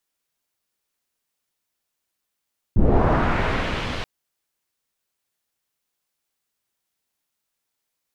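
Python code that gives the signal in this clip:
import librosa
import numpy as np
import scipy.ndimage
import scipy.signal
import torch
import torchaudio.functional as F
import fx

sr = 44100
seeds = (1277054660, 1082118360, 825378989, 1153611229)

y = fx.riser_noise(sr, seeds[0], length_s=1.28, colour='pink', kind='lowpass', start_hz=150.0, end_hz=3500.0, q=1.2, swell_db=-16, law='linear')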